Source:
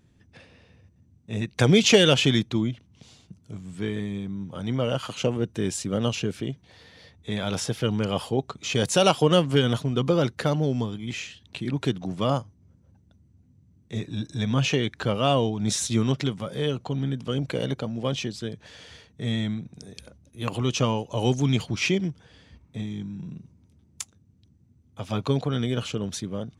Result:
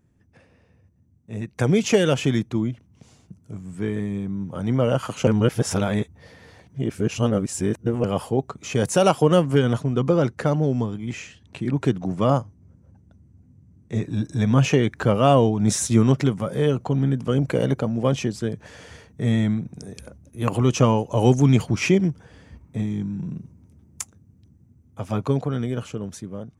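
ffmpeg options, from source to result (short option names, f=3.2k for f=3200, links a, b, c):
-filter_complex "[0:a]asettb=1/sr,asplit=3[a][b][c];[a]atrim=end=9.574[d];[b]atrim=start=9.57:end=14.06,asetpts=PTS-STARTPTS,afade=t=in:d=0.004:c=qsin,afade=t=out:st=4.486:d=0.004:c=qsin,lowpass=9.2k[e];[c]atrim=start=14.056[f];[d][e]acrossfade=d=0.004:c1=hsin:c2=qsin[g];[g][f]acrossfade=d=0.004:c1=qsin:c2=hsin,asplit=3[h][i][j];[h]atrim=end=5.272[k];[i]atrim=start=5.268:end=8.042,asetpts=PTS-STARTPTS,areverse[l];[j]atrim=start=8.038[m];[k][l]acrossfade=d=0.004:c1=hsin:c2=hsin[n];[n][m]acrossfade=d=0.004:c1=hsin:c2=hsin,equalizer=f=3.7k:w=1.2:g=-12,dynaudnorm=f=320:g=13:m=11.5dB,volume=-2.5dB"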